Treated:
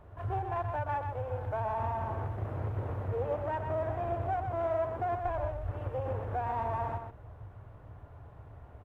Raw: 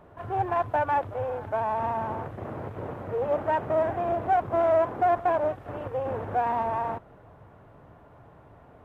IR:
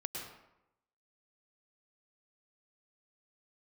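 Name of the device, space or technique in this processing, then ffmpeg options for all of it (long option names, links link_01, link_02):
car stereo with a boomy subwoofer: -filter_complex "[0:a]asplit=3[link_01][link_02][link_03];[link_01]afade=type=out:start_time=5.23:duration=0.02[link_04];[link_02]asubboost=boost=8.5:cutoff=66,afade=type=in:start_time=5.23:duration=0.02,afade=type=out:start_time=5.71:duration=0.02[link_05];[link_03]afade=type=in:start_time=5.71:duration=0.02[link_06];[link_04][link_05][link_06]amix=inputs=3:normalize=0,lowshelf=frequency=130:width_type=q:width=1.5:gain=10,alimiter=limit=-20.5dB:level=0:latency=1:release=368,aecho=1:1:125:0.473,volume=-4.5dB"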